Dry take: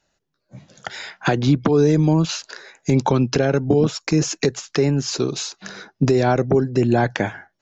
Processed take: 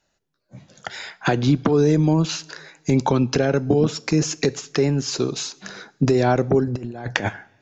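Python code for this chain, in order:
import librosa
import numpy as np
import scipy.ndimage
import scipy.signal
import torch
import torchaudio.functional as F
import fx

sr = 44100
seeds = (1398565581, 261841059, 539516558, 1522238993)

y = fx.over_compress(x, sr, threshold_db=-24.0, ratio=-0.5, at=(6.67, 7.29))
y = fx.rev_double_slope(y, sr, seeds[0], early_s=0.54, late_s=2.5, knee_db=-18, drr_db=18.0)
y = y * librosa.db_to_amplitude(-1.0)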